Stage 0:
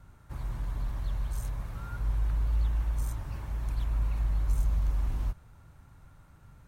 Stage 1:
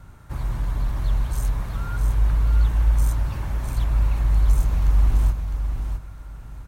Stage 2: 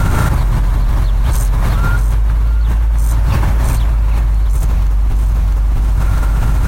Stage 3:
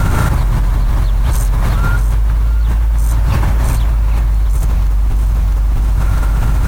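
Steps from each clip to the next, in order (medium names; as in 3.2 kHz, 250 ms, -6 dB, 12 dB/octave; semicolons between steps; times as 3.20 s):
feedback delay 657 ms, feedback 24%, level -7 dB; trim +9 dB
level flattener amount 100%; trim +1 dB
word length cut 8-bit, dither triangular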